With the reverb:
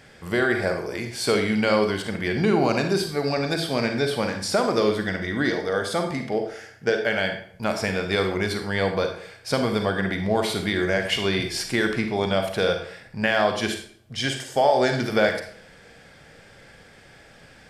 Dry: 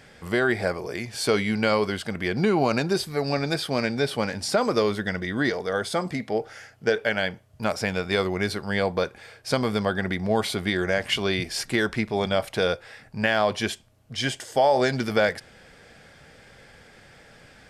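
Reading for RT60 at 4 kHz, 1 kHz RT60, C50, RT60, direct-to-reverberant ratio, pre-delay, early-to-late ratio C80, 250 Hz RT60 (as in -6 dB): 0.45 s, 0.55 s, 7.0 dB, 0.55 s, 5.0 dB, 36 ms, 10.5 dB, 0.60 s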